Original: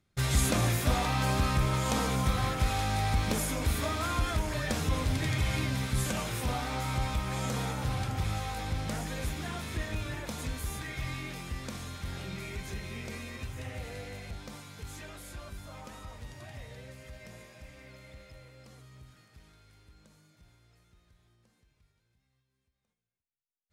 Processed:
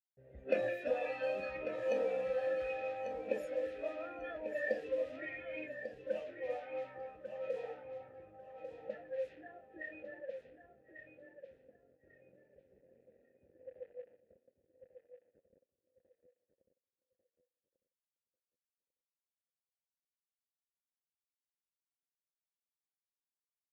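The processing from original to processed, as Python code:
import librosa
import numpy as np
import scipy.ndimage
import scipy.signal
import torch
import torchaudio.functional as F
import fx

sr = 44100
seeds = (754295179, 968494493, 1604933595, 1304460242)

p1 = fx.quant_dither(x, sr, seeds[0], bits=6, dither='none')
p2 = fx.noise_reduce_blind(p1, sr, reduce_db=15)
p3 = fx.vowel_filter(p2, sr, vowel='e')
p4 = fx.env_lowpass(p3, sr, base_hz=310.0, full_db=-41.5)
p5 = p4 + fx.echo_feedback(p4, sr, ms=1145, feedback_pct=21, wet_db=-9, dry=0)
y = p5 * librosa.db_to_amplitude(7.5)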